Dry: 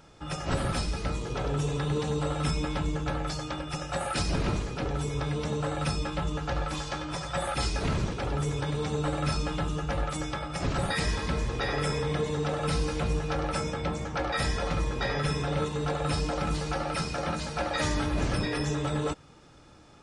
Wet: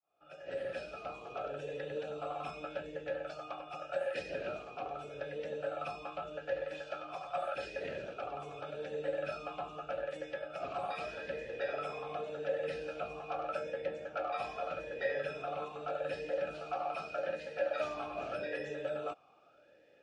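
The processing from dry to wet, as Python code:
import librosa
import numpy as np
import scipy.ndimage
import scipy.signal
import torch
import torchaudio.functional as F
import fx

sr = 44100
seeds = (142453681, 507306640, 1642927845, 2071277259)

y = fx.fade_in_head(x, sr, length_s=0.88)
y = fx.vowel_sweep(y, sr, vowels='a-e', hz=0.83)
y = y * 10.0 ** (3.5 / 20.0)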